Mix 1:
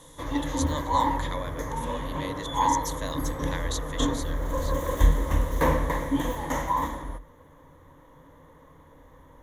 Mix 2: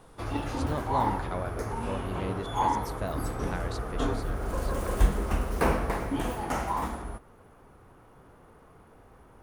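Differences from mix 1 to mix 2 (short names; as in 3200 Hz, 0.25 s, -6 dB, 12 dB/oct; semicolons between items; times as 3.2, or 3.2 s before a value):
speech: add tilt -4.5 dB/oct; master: remove ripple EQ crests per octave 1.1, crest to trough 13 dB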